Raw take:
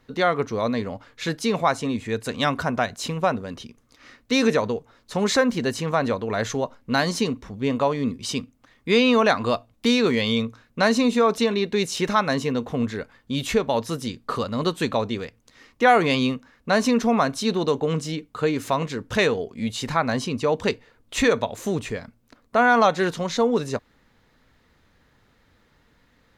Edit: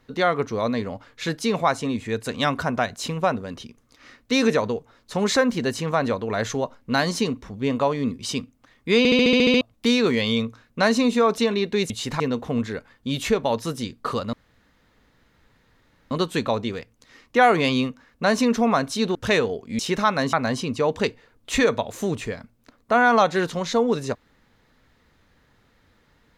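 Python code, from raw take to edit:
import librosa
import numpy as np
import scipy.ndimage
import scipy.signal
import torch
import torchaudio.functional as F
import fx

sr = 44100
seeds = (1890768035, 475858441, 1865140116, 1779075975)

y = fx.edit(x, sr, fx.stutter_over(start_s=8.98, slice_s=0.07, count=9),
    fx.swap(start_s=11.9, length_s=0.54, other_s=19.67, other_length_s=0.3),
    fx.insert_room_tone(at_s=14.57, length_s=1.78),
    fx.cut(start_s=17.61, length_s=1.42), tone=tone)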